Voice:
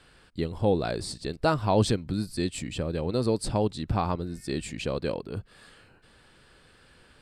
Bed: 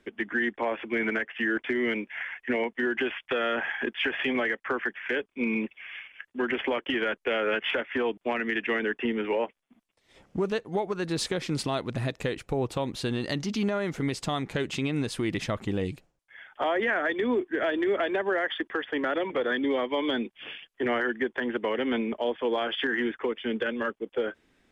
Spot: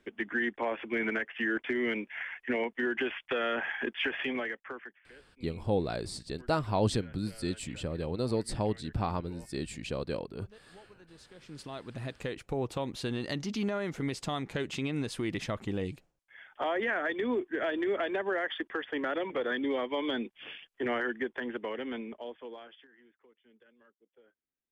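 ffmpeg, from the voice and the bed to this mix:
-filter_complex "[0:a]adelay=5050,volume=-5dB[a];[1:a]volume=18.5dB,afade=t=out:st=4.05:d=0.96:silence=0.0707946,afade=t=in:st=11.31:d=1.27:silence=0.0794328,afade=t=out:st=21.05:d=1.82:silence=0.0334965[b];[a][b]amix=inputs=2:normalize=0"

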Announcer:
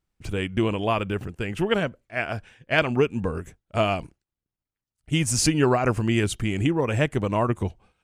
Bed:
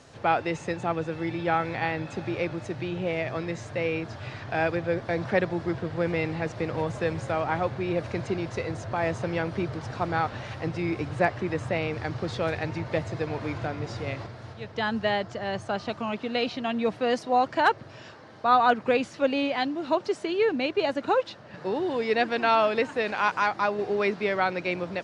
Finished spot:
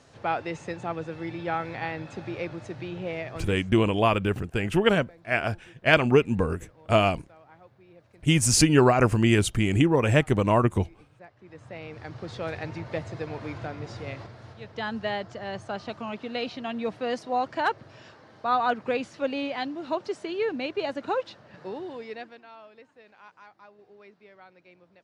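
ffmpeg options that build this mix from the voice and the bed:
-filter_complex "[0:a]adelay=3150,volume=2dB[a];[1:a]volume=18dB,afade=t=out:st=3.16:d=0.64:silence=0.0794328,afade=t=in:st=11.37:d=1.22:silence=0.0794328,afade=t=out:st=21.34:d=1.09:silence=0.0749894[b];[a][b]amix=inputs=2:normalize=0"

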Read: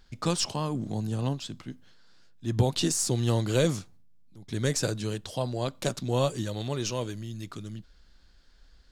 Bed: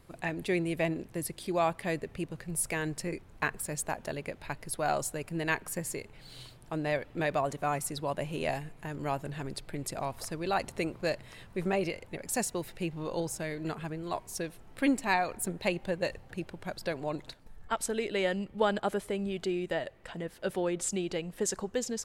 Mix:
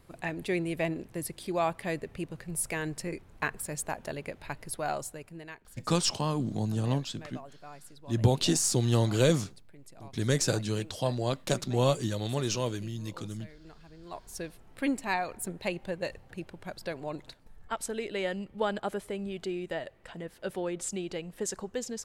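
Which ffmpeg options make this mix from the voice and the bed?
-filter_complex "[0:a]adelay=5650,volume=0.5dB[a];[1:a]volume=14dB,afade=t=out:st=4.66:d=0.88:silence=0.149624,afade=t=in:st=13.9:d=0.53:silence=0.188365[b];[a][b]amix=inputs=2:normalize=0"

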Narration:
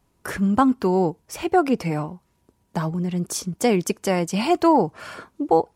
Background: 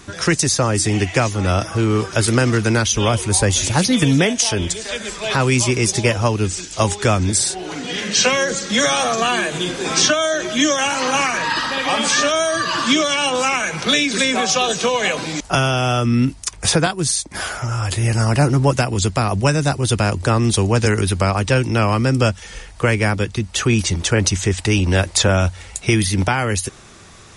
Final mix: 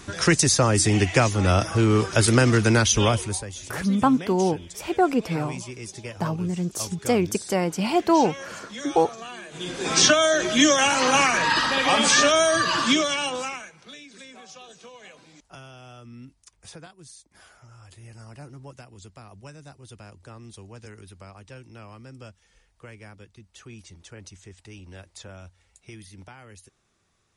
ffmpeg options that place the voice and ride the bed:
-filter_complex "[0:a]adelay=3450,volume=-2dB[a];[1:a]volume=17dB,afade=t=out:st=3.01:d=0.43:silence=0.125893,afade=t=in:st=9.49:d=0.61:silence=0.112202,afade=t=out:st=12.52:d=1.21:silence=0.0473151[b];[a][b]amix=inputs=2:normalize=0"

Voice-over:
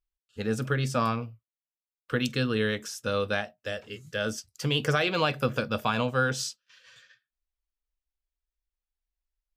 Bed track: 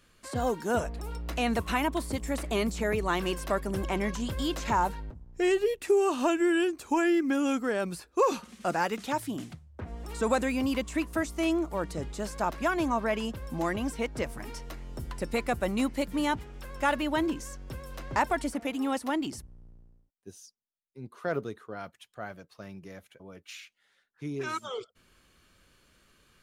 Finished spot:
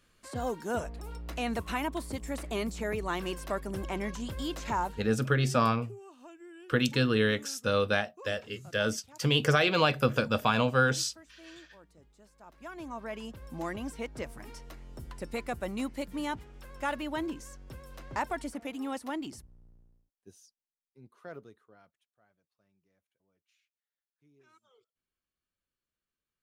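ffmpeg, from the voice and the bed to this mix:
-filter_complex "[0:a]adelay=4600,volume=1dB[a];[1:a]volume=14.5dB,afade=t=out:st=4.8:d=0.47:silence=0.0944061,afade=t=in:st=12.44:d=1.16:silence=0.112202,afade=t=out:st=19.96:d=2.15:silence=0.0595662[b];[a][b]amix=inputs=2:normalize=0"

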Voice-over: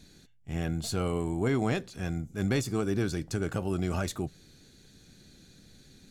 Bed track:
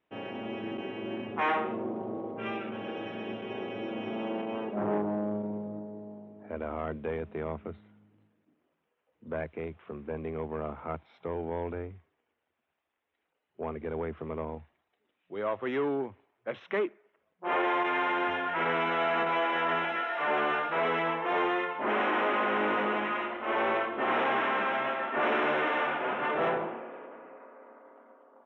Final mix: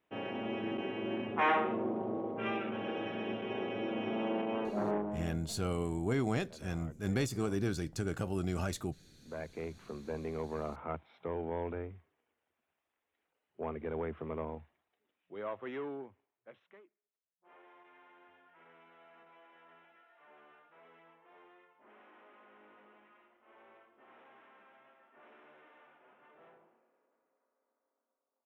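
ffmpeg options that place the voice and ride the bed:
-filter_complex "[0:a]adelay=4650,volume=-4.5dB[a];[1:a]volume=14dB,afade=t=out:st=4.63:d=0.76:silence=0.141254,afade=t=in:st=9.09:d=0.6:silence=0.188365,afade=t=out:st=14.35:d=2.47:silence=0.0334965[b];[a][b]amix=inputs=2:normalize=0"

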